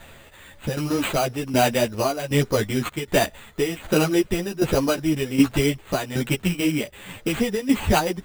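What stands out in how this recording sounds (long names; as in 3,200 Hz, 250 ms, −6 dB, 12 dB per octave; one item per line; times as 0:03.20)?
tremolo saw down 1.3 Hz, depth 75%
aliases and images of a low sample rate 5,400 Hz, jitter 0%
a shimmering, thickened sound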